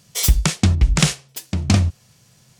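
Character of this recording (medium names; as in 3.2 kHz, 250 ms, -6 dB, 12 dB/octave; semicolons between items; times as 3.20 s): noise floor -55 dBFS; spectral tilt -4.0 dB/octave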